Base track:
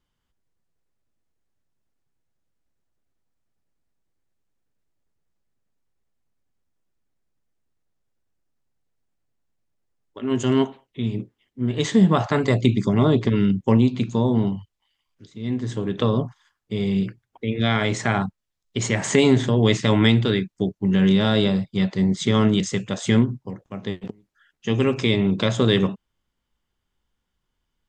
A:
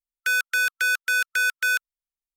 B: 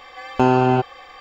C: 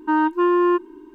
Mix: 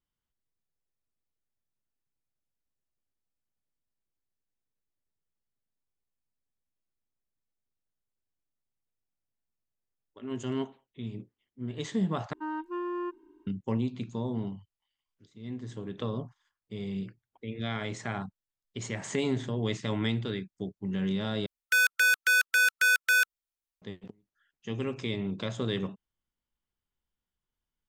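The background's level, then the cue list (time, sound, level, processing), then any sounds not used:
base track -13 dB
12.33 replace with C -16.5 dB
21.46 replace with A -1 dB
not used: B

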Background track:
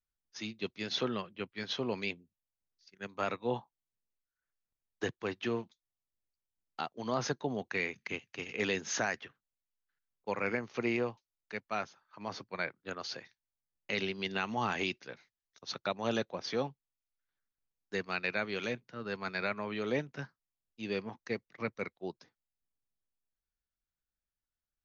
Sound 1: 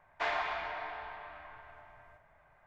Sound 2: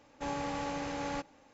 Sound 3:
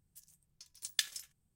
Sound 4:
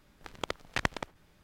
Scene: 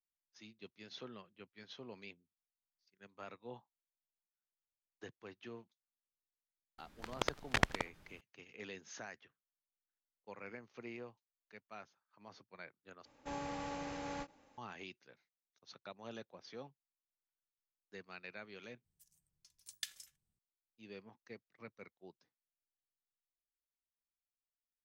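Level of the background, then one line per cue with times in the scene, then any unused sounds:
background track -16 dB
6.78 add 4 -1 dB
13.05 replace with 2 -6.5 dB + ending taper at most 380 dB/s
18.84 replace with 3 -10.5 dB
not used: 1

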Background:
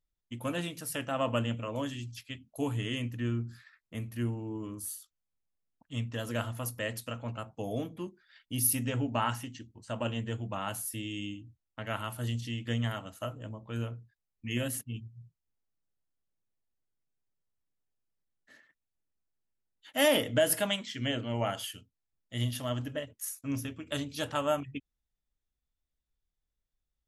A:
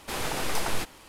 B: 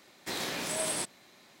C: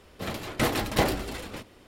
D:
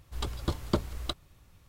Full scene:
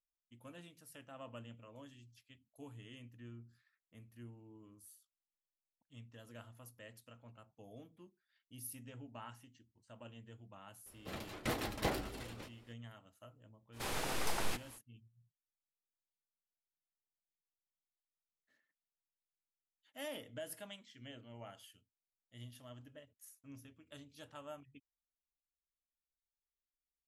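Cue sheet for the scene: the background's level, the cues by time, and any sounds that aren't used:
background -20 dB
10.86 add C -12 dB
13.72 add A -8 dB, fades 0.05 s
not used: B, D

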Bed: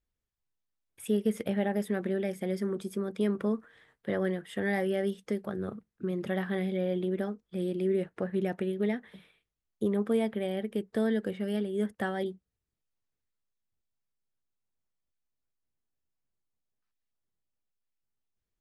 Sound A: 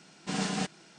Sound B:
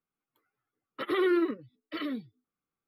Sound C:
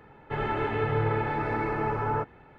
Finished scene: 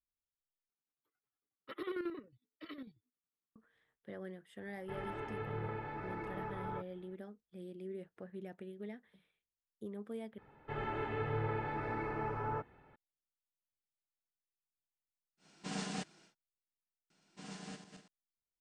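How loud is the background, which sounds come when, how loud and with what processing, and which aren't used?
bed -16.5 dB
0.69 replace with B -12 dB + chopper 11 Hz, depth 60%
4.58 add C -14.5 dB
10.38 replace with C -10 dB
15.37 add A -9 dB, fades 0.10 s
17.1 add A -18 dB + regenerating reverse delay 0.124 s, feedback 52%, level -6 dB

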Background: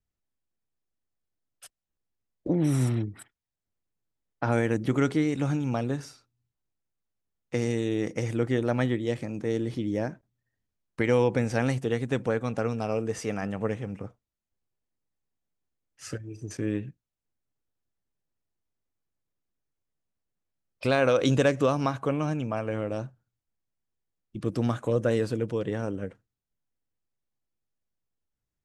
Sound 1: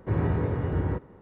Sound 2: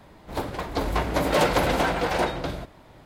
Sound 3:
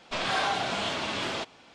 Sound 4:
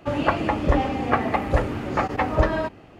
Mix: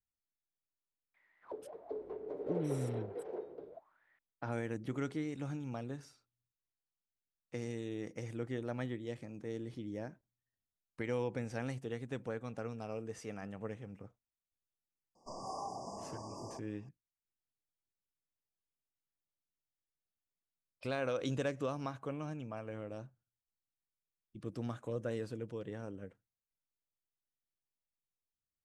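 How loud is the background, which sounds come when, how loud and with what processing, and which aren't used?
background -13.5 dB
1.14 add 2 -4.5 dB + auto-wah 420–2300 Hz, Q 11, down, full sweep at -26.5 dBFS
15.15 add 3 -12.5 dB + brick-wall FIR band-stop 1200–4700 Hz
not used: 1, 4

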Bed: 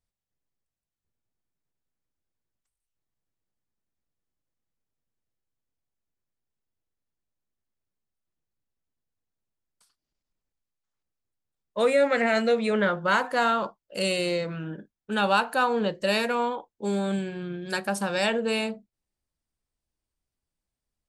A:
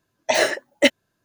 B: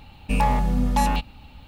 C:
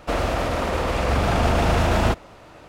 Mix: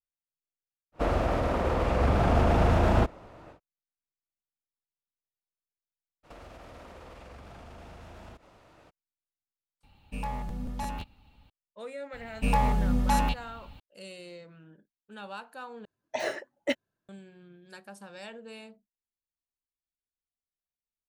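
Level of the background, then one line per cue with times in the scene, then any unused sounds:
bed -19 dB
0.92 add C -2.5 dB, fades 0.10 s + high shelf 2000 Hz -11 dB
6.23 add C -12 dB, fades 0.02 s + compressor 10:1, threshold -32 dBFS
9.83 add B -14 dB + crackling interface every 0.17 s repeat
12.13 add B -4 dB
15.85 replace with A -11.5 dB + high shelf 3100 Hz -9 dB

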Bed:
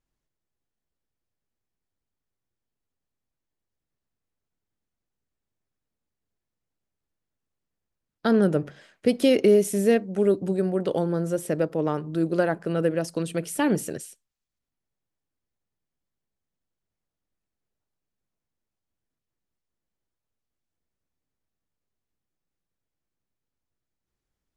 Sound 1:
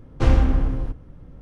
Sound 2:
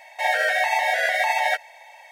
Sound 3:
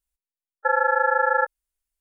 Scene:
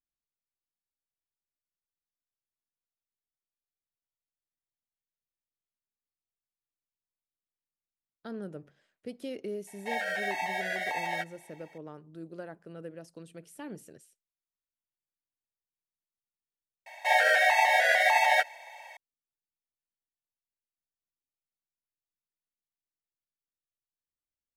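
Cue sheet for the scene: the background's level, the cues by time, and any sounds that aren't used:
bed -19.5 dB
9.67 add 2 -11.5 dB
16.86 add 2 -1.5 dB
not used: 1, 3

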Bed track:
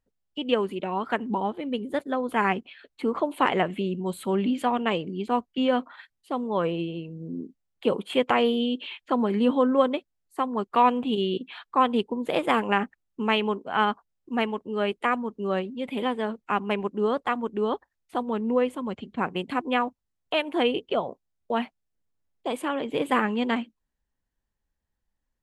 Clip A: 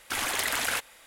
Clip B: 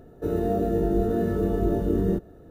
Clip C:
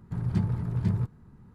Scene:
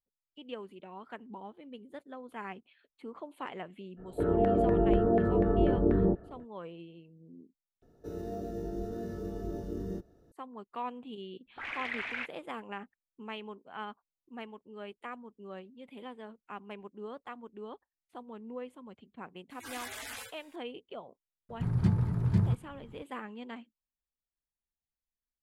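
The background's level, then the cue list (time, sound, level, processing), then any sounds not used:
bed track -18 dB
3.96 add B -3 dB, fades 0.05 s + LFO low-pass saw down 4.1 Hz 700–1900 Hz
7.82 replace with B -14 dB + bell 5400 Hz +13.5 dB 0.68 oct
11.46 add A -14 dB + envelope low-pass 210–2300 Hz up, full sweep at -27 dBFS
19.5 add A -8 dB + median-filter separation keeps harmonic
21.49 add C

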